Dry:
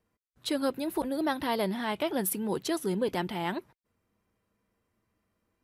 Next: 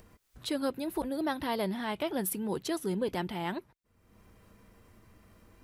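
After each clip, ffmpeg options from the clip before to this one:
-af "lowshelf=f=73:g=11,acompressor=mode=upward:threshold=0.0126:ratio=2.5,volume=0.708"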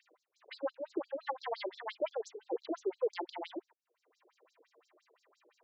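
-af "afftfilt=real='re*between(b*sr/1024,420*pow(5600/420,0.5+0.5*sin(2*PI*5.8*pts/sr))/1.41,420*pow(5600/420,0.5+0.5*sin(2*PI*5.8*pts/sr))*1.41)':imag='im*between(b*sr/1024,420*pow(5600/420,0.5+0.5*sin(2*PI*5.8*pts/sr))/1.41,420*pow(5600/420,0.5+0.5*sin(2*PI*5.8*pts/sr))*1.41)':win_size=1024:overlap=0.75,volume=1.26"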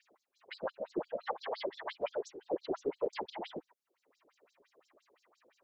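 -af "afftfilt=real='hypot(re,im)*cos(2*PI*random(0))':imag='hypot(re,im)*sin(2*PI*random(1))':win_size=512:overlap=0.75,volume=2.11"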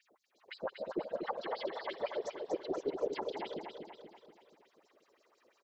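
-af "aecho=1:1:240|480|720|960|1200|1440:0.531|0.271|0.138|0.0704|0.0359|0.0183,volume=0.891"

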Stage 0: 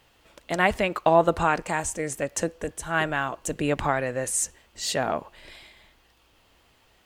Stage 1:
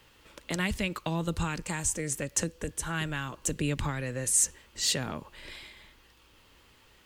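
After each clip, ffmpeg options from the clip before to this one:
-filter_complex "[0:a]equalizer=f=700:w=4.4:g=-10.5,acrossover=split=220|3000[s0][s1][s2];[s1]acompressor=threshold=0.0141:ratio=6[s3];[s0][s3][s2]amix=inputs=3:normalize=0,volume=1.26"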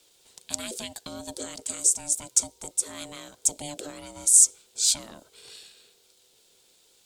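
-af "aeval=exprs='val(0)*sin(2*PI*440*n/s)':c=same,equalizer=f=250:t=o:w=1:g=4,equalizer=f=500:t=o:w=1:g=3,equalizer=f=2000:t=o:w=1:g=-4,equalizer=f=4000:t=o:w=1:g=8,equalizer=f=8000:t=o:w=1:g=12,crystalizer=i=2:c=0,volume=0.355"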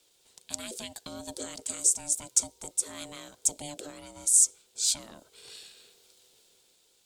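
-af "dynaudnorm=f=130:g=13:m=2.11,volume=0.562"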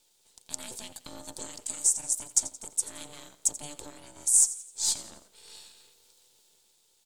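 -filter_complex "[0:a]aecho=1:1:86|172|258|344:0.168|0.0739|0.0325|0.0143,acrossover=split=4300[s0][s1];[s0]aeval=exprs='max(val(0),0)':c=same[s2];[s2][s1]amix=inputs=2:normalize=0"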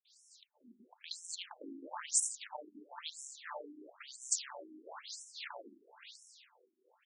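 -filter_complex "[0:a]asplit=2[s0][s1];[s1]highpass=f=720:p=1,volume=11.2,asoftclip=type=tanh:threshold=0.501[s2];[s0][s2]amix=inputs=2:normalize=0,lowpass=f=2800:p=1,volume=0.501,acrossover=split=220|2900[s3][s4][s5];[s5]adelay=50[s6];[s4]adelay=550[s7];[s3][s7][s6]amix=inputs=3:normalize=0,afftfilt=real='re*between(b*sr/1024,260*pow(7700/260,0.5+0.5*sin(2*PI*1*pts/sr))/1.41,260*pow(7700/260,0.5+0.5*sin(2*PI*1*pts/sr))*1.41)':imag='im*between(b*sr/1024,260*pow(7700/260,0.5+0.5*sin(2*PI*1*pts/sr))/1.41,260*pow(7700/260,0.5+0.5*sin(2*PI*1*pts/sr))*1.41)':win_size=1024:overlap=0.75,volume=0.794"

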